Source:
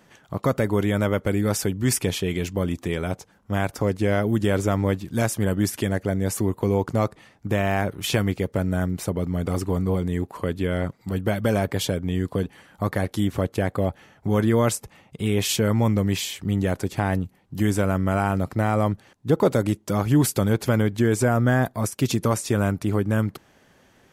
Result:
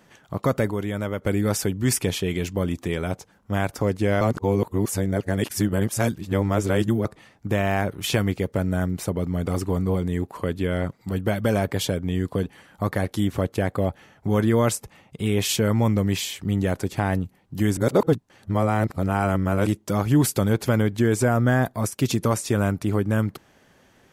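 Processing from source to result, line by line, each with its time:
0:00.71–0:01.22: clip gain −5.5 dB
0:04.21–0:07.05: reverse
0:17.77–0:19.66: reverse

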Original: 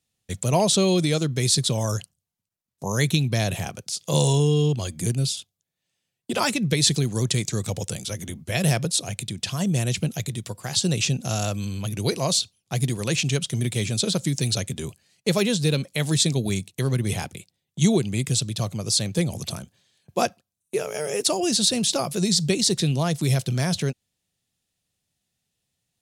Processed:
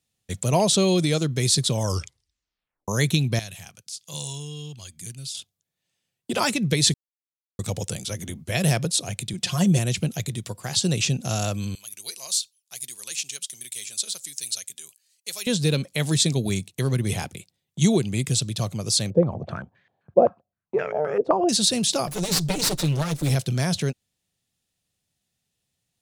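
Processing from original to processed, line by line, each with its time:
0:01.81: tape stop 1.07 s
0:03.39–0:05.35: guitar amp tone stack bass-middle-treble 5-5-5
0:06.94–0:07.59: silence
0:09.33–0:09.79: comb filter 5.6 ms, depth 86%
0:11.75–0:15.47: first difference
0:19.10–0:21.49: low-pass on a step sequencer 7.7 Hz 550–1,900 Hz
0:22.07–0:23.35: lower of the sound and its delayed copy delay 6.6 ms

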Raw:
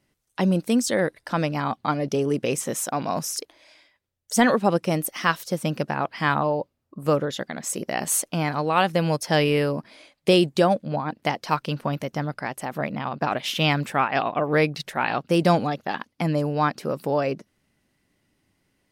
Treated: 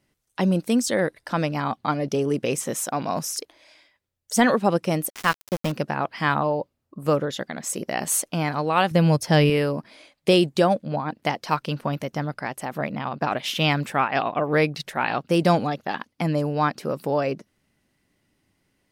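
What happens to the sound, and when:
0:05.10–0:05.72: centre clipping without the shift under −26.5 dBFS
0:08.91–0:09.50: parametric band 73 Hz +12 dB 2.6 octaves

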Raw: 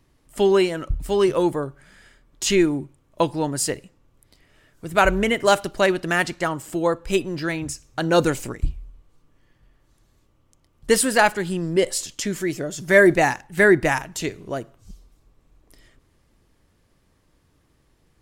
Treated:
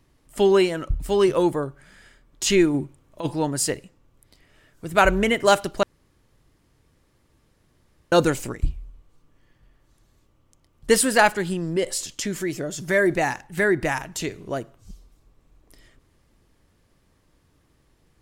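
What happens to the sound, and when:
0:02.74–0:03.34: compressor whose output falls as the input rises −22 dBFS, ratio −0.5
0:05.83–0:08.12: fill with room tone
0:11.53–0:14.43: downward compressor 1.5 to 1, threshold −25 dBFS

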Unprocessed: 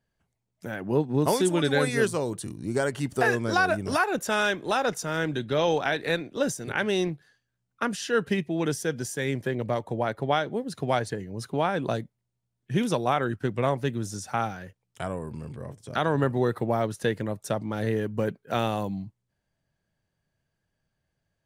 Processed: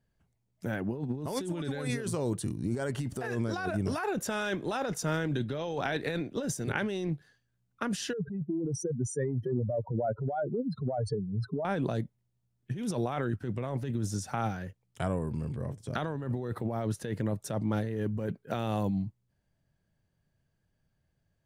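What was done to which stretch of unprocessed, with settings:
0:08.13–0:11.65: expanding power law on the bin magnitudes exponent 3.2
whole clip: low-shelf EQ 330 Hz +7.5 dB; compressor whose output falls as the input rises −26 dBFS, ratio −1; level −5.5 dB

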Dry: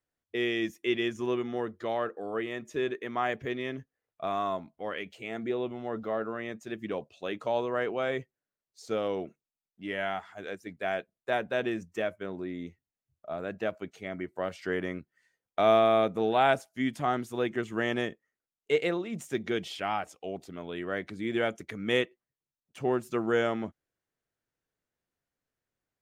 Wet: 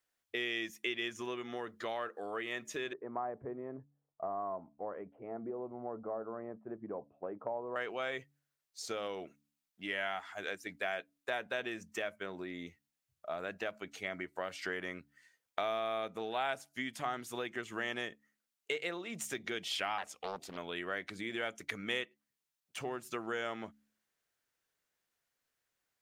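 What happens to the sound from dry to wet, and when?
0:02.93–0:07.76: inverse Chebyshev low-pass filter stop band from 5,500 Hz, stop band 80 dB
0:19.98–0:20.57: highs frequency-modulated by the lows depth 0.65 ms
whole clip: downward compressor 4 to 1, threshold −36 dBFS; tilt shelving filter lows −6.5 dB, about 640 Hz; hum removal 71.58 Hz, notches 4

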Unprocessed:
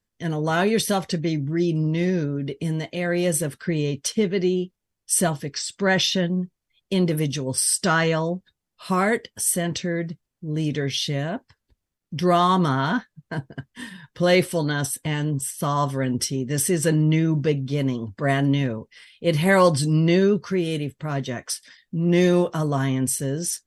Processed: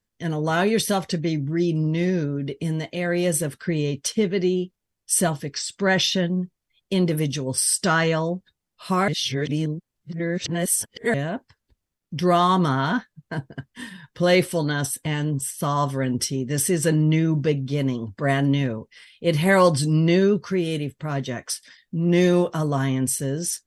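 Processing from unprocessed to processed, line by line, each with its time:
0:09.08–0:11.14: reverse

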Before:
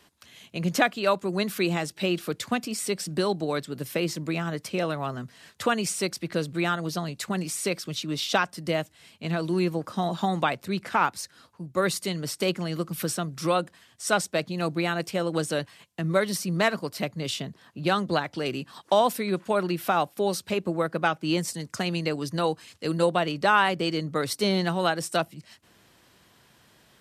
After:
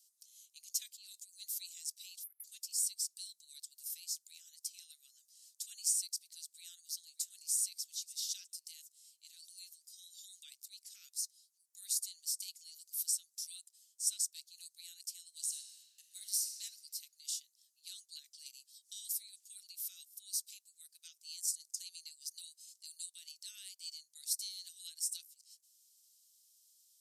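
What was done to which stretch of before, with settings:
0:00.92–0:01.45: transient designer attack −11 dB, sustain +7 dB
0:02.24–0:02.44: time-frequency box erased 2,200–10,000 Hz
0:06.44–0:07.53: delay throw 590 ms, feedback 35%, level −15.5 dB
0:15.28–0:16.54: thrown reverb, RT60 2.5 s, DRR 2.5 dB
whole clip: inverse Chebyshev high-pass filter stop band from 990 Hz, stop band 80 dB

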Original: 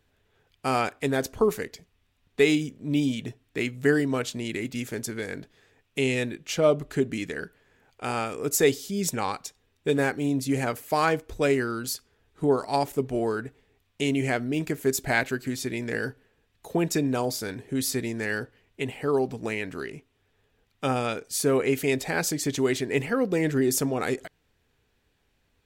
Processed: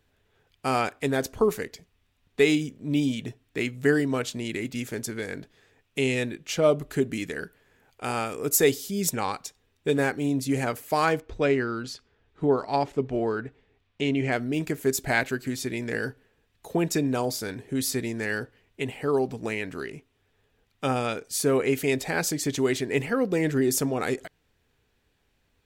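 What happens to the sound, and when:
0:06.65–0:09.10: parametric band 13,000 Hz +6.5 dB
0:11.20–0:14.32: low-pass filter 4,200 Hz

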